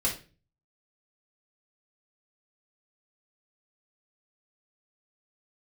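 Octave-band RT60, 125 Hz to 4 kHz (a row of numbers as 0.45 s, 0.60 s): 0.60 s, 0.50 s, 0.40 s, 0.30 s, 0.35 s, 0.30 s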